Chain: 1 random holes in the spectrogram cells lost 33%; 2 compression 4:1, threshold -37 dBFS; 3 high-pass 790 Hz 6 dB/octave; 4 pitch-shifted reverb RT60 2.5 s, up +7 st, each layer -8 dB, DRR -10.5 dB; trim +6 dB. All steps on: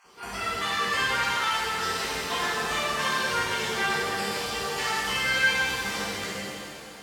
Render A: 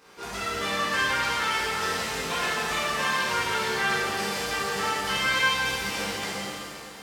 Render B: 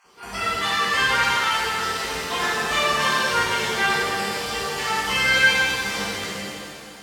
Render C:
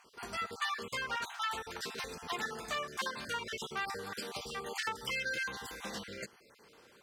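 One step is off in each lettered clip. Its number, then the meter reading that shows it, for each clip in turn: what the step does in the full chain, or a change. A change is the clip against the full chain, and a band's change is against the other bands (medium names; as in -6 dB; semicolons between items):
1, momentary loudness spread change -1 LU; 2, mean gain reduction 3.0 dB; 4, crest factor change +4.5 dB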